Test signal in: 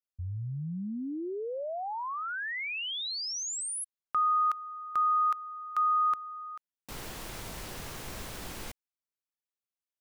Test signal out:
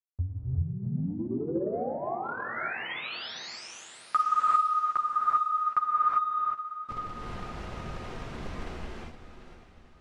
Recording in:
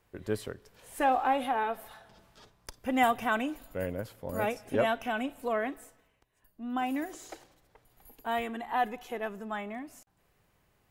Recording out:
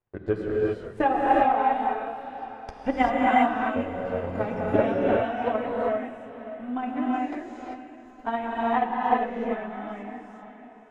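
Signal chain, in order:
noise gate −58 dBFS, range −13 dB
high-shelf EQ 2,900 Hz −10.5 dB
feedback delay with all-pass diffusion 578 ms, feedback 43%, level −11 dB
flanger 0.88 Hz, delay 7.6 ms, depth 7.6 ms, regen −18%
transient designer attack +12 dB, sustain 0 dB
high-frequency loss of the air 92 metres
reverb whose tail is shaped and stops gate 420 ms rising, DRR −4.5 dB

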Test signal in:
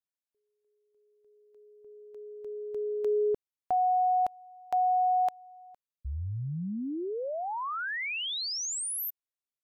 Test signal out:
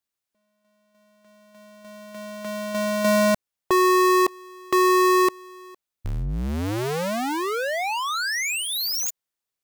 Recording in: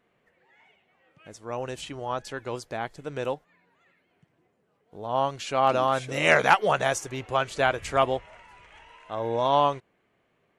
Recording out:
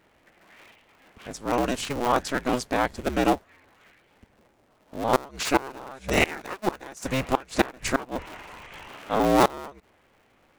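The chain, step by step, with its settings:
sub-harmonics by changed cycles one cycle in 2, inverted
dynamic equaliser 3,200 Hz, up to −6 dB, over −49 dBFS, Q 5.9
gate with flip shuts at −14 dBFS, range −25 dB
level +8 dB

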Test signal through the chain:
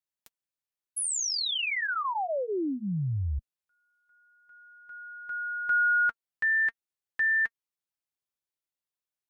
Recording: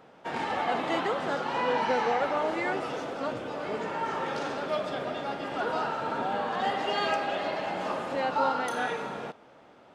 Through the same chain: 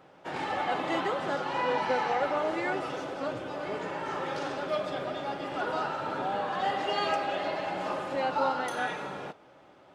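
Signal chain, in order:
notch comb filter 230 Hz

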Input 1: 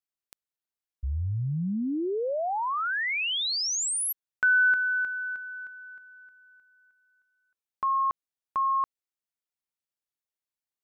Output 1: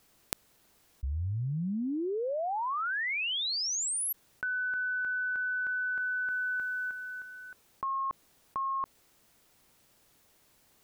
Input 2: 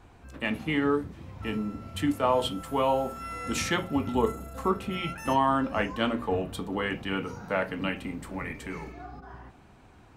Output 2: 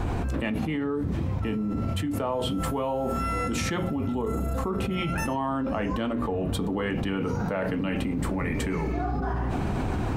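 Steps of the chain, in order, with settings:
tilt shelving filter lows +4.5 dB, about 780 Hz
envelope flattener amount 100%
level −9 dB

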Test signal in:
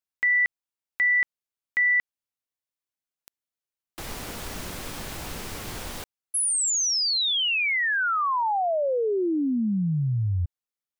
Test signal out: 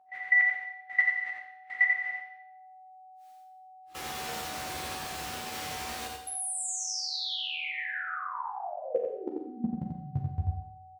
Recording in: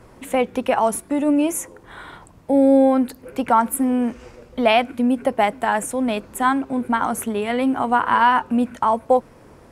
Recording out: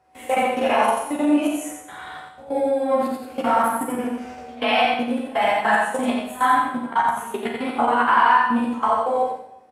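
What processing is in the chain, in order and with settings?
random phases in long frames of 200 ms
steady tone 750 Hz −45 dBFS
high-shelf EQ 7,600 Hz −6.5 dB
output level in coarse steps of 21 dB
high-pass filter 57 Hz
low-shelf EQ 500 Hz −9.5 dB
double-tracking delay 13 ms −5 dB
on a send: single-tap delay 88 ms −4 dB
on the sum: four-comb reverb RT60 0.76 s, combs from 30 ms, DRR 4 dB
level +4 dB

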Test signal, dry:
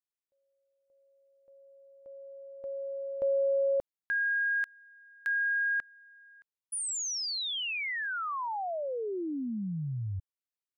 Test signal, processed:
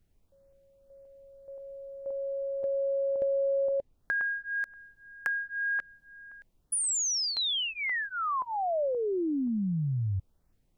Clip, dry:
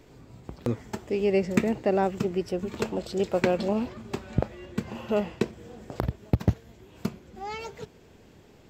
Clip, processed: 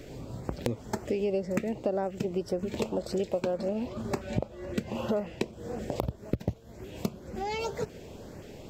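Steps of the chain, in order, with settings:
parametric band 570 Hz +6 dB 0.34 octaves
downward compressor 6 to 1, threshold −36 dBFS
background noise brown −76 dBFS
auto-filter notch saw up 1.9 Hz 880–3,800 Hz
level +8.5 dB

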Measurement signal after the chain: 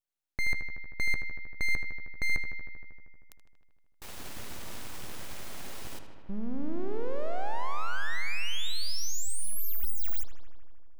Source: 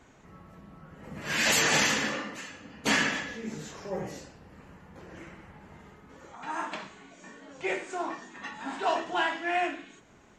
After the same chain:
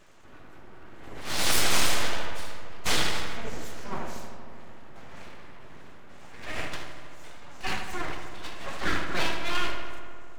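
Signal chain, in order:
full-wave rectification
feedback echo with a low-pass in the loop 78 ms, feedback 81%, low-pass 4,100 Hz, level −8.5 dB
level +2.5 dB

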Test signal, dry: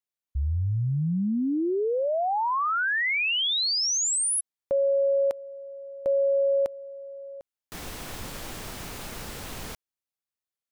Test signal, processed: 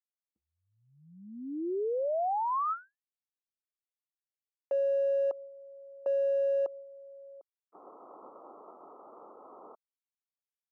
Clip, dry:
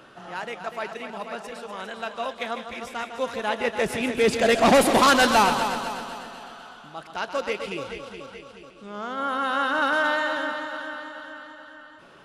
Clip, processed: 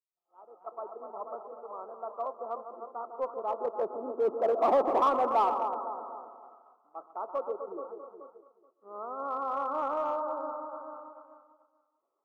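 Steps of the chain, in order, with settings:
fade in at the beginning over 1.06 s
Chebyshev low-pass filter 1,300 Hz, order 8
downward expander −37 dBFS, range −33 dB
high-pass filter 350 Hz 24 dB per octave
in parallel at −6 dB: hard clipping −22 dBFS
on the sum: level −7.5 dB

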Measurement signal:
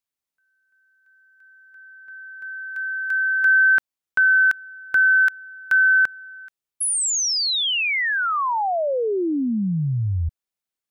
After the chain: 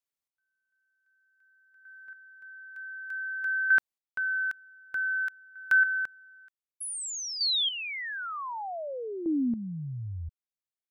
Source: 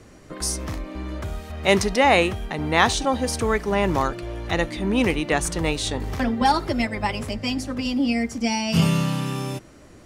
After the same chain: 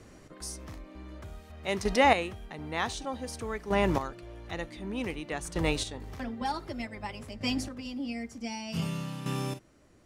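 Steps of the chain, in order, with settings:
square-wave tremolo 0.54 Hz, depth 65%, duty 15%
level −4.5 dB

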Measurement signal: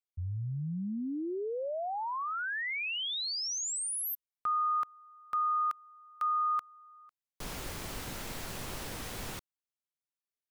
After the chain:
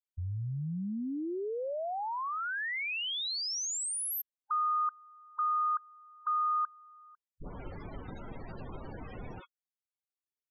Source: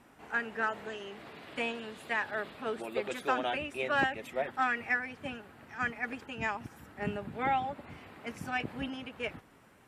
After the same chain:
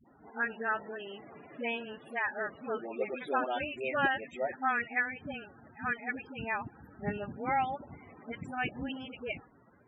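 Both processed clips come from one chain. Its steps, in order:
spectral peaks only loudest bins 32
all-pass dispersion highs, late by 67 ms, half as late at 530 Hz

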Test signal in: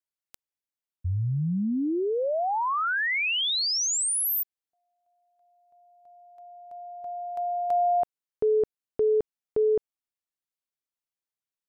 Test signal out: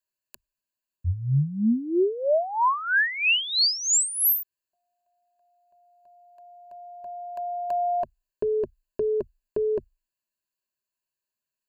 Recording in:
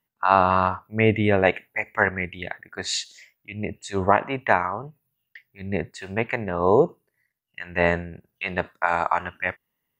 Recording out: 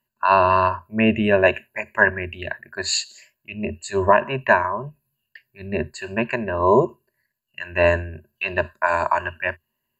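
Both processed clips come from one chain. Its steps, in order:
EQ curve with evenly spaced ripples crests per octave 1.4, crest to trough 15 dB

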